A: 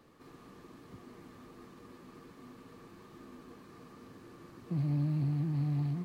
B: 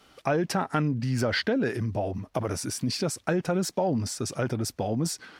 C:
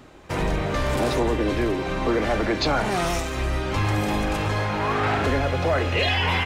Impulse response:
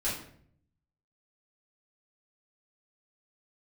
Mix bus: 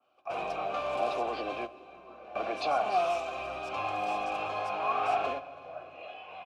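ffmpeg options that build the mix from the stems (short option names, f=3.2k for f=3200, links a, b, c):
-filter_complex "[0:a]volume=-10.5dB[a];[1:a]highpass=f=890:p=1,volume=-2.5dB,asplit=3[b][c][d];[b]atrim=end=1.52,asetpts=PTS-STARTPTS,afade=t=out:st=1.516:d=0.004:c=hsin[e];[c]atrim=start=1.52:end=2.24,asetpts=PTS-STARTPTS,volume=0[f];[d]atrim=start=2.24,asetpts=PTS-STARTPTS,afade=t=in:d=0.004:c=hsin[g];[e][f][g]concat=n=3:v=0:a=1,asplit=2[h][i];[2:a]volume=2.5dB,asplit=3[j][k][l];[k]volume=-22.5dB[m];[l]volume=-21dB[n];[i]apad=whole_len=284565[o];[j][o]sidechaingate=range=-33dB:threshold=-52dB:ratio=16:detection=peak[p];[3:a]atrim=start_sample=2205[q];[m][q]afir=irnorm=-1:irlink=0[r];[n]aecho=0:1:331|662|993|1324|1655|1986|2317:1|0.51|0.26|0.133|0.0677|0.0345|0.0176[s];[a][h][p][r][s]amix=inputs=5:normalize=0,asplit=3[t][u][v];[t]bandpass=f=730:t=q:w=8,volume=0dB[w];[u]bandpass=f=1.09k:t=q:w=8,volume=-6dB[x];[v]bandpass=f=2.44k:t=q:w=8,volume=-9dB[y];[w][x][y]amix=inputs=3:normalize=0,adynamicequalizer=threshold=0.00447:dfrequency=2600:dqfactor=0.7:tfrequency=2600:tqfactor=0.7:attack=5:release=100:ratio=0.375:range=3:mode=boostabove:tftype=highshelf"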